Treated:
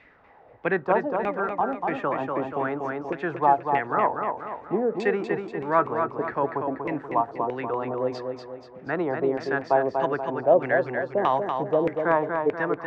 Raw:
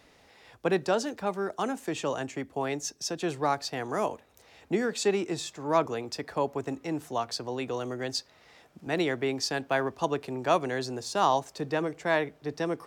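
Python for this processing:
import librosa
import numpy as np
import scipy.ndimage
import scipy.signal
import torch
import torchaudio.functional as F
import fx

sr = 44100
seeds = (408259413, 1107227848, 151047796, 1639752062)

y = fx.filter_lfo_lowpass(x, sr, shape='saw_down', hz=1.6, low_hz=430.0, high_hz=2300.0, q=3.8)
y = fx.echo_feedback(y, sr, ms=240, feedback_pct=46, wet_db=-5.5)
y = fx.band_squash(y, sr, depth_pct=70, at=(1.6, 3.1))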